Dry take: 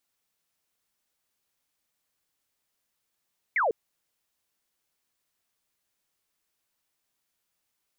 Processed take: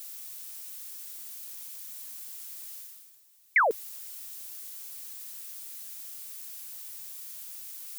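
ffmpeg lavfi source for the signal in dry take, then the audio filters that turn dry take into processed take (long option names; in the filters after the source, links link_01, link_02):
-f lavfi -i "aevalsrc='0.0841*clip(t/0.002,0,1)*clip((0.15-t)/0.002,0,1)*sin(2*PI*2300*0.15/log(400/2300)*(exp(log(400/2300)*t/0.15)-1))':duration=0.15:sample_rate=44100"
-af "areverse,acompressor=mode=upward:threshold=-44dB:ratio=2.5,areverse,crystalizer=i=5.5:c=0,highpass=130"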